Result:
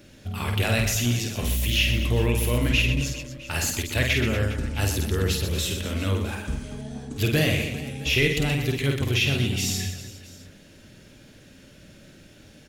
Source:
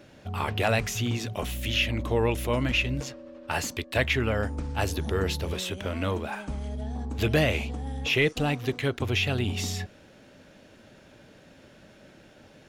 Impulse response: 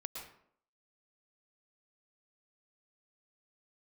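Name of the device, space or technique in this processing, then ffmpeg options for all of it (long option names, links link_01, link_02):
smiley-face EQ: -af "lowshelf=frequency=100:gain=6,equalizer=frequency=820:width_type=o:width=1.6:gain=-8.5,highshelf=frequency=6100:gain=8,aecho=1:1:50|125|237.5|406.2|659.4:0.631|0.398|0.251|0.158|0.1,volume=1.5dB"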